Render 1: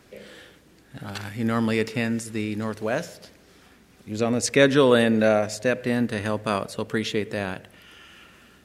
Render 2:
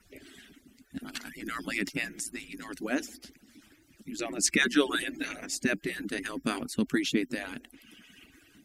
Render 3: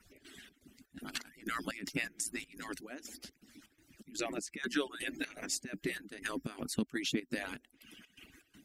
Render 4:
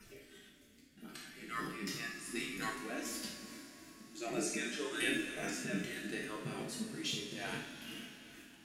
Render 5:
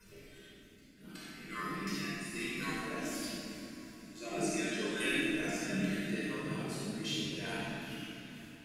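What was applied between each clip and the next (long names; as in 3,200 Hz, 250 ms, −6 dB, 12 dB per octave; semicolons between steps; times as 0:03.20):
harmonic-percussive split with one part muted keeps percussive; octave-band graphic EQ 125/250/500/1,000/4,000 Hz −7/+11/−11/−11/−4 dB; level +2 dB
harmonic and percussive parts rebalanced harmonic −5 dB; downward compressor 3 to 1, threshold −31 dBFS, peak gain reduction 9 dB; gate pattern "x.xx.xx.xx..x" 123 BPM −12 dB
volume swells 250 ms; coupled-rooms reverb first 0.39 s, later 4.6 s, from −18 dB, DRR −1.5 dB; harmonic and percussive parts rebalanced percussive −15 dB; level +9 dB
rectangular room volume 2,600 cubic metres, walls mixed, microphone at 5.1 metres; level −5.5 dB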